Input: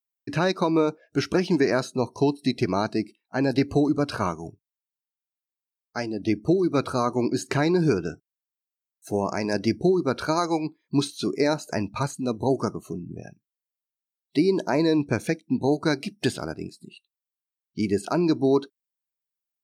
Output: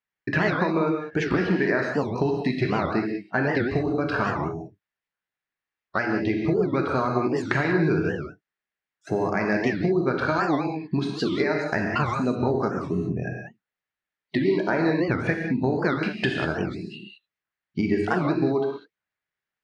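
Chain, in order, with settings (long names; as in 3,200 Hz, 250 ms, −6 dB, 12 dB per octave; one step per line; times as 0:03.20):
low-pass filter 3,000 Hz 12 dB per octave
parametric band 1,800 Hz +10 dB 0.63 octaves
downward compressor, threshold −28 dBFS, peak gain reduction 13 dB
reverb whose tail is shaped and stops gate 220 ms flat, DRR 1 dB
wow of a warped record 78 rpm, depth 250 cents
level +6 dB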